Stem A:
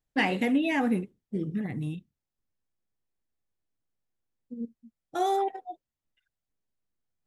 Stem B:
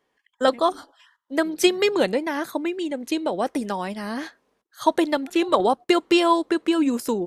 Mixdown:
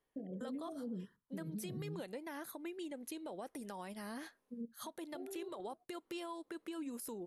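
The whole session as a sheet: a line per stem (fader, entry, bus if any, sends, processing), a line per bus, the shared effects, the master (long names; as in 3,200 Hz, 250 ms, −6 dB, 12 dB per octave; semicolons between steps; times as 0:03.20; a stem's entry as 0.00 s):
−4.5 dB, 0.00 s, no send, downward compressor 4 to 1, threshold −33 dBFS, peak gain reduction 11 dB; Chebyshev low-pass with heavy ripple 670 Hz, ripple 6 dB
−14.5 dB, 0.00 s, no send, downward compressor 6 to 1, threshold −26 dBFS, peak gain reduction 13 dB; parametric band 11,000 Hz +14.5 dB 0.42 octaves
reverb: not used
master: brickwall limiter −35.5 dBFS, peak gain reduction 11 dB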